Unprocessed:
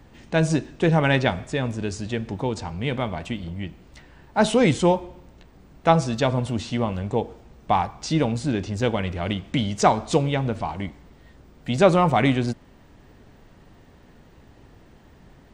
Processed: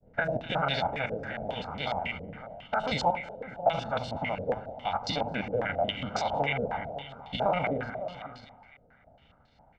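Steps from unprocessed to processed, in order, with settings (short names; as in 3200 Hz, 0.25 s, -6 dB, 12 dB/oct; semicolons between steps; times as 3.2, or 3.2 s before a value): stepped spectrum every 0.1 s; notches 50/100 Hz; expander -46 dBFS; low shelf 110 Hz -7.5 dB; comb 1.4 ms, depth 99%; harmonic-percussive split harmonic -14 dB; limiter -20 dBFS, peak gain reduction 10.5 dB; outdoor echo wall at 150 m, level -13 dB; granular stretch 0.63×, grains 75 ms; on a send: split-band echo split 830 Hz, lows 99 ms, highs 0.251 s, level -12 dB; on the sum: stepped low-pass 7.3 Hz 480–4300 Hz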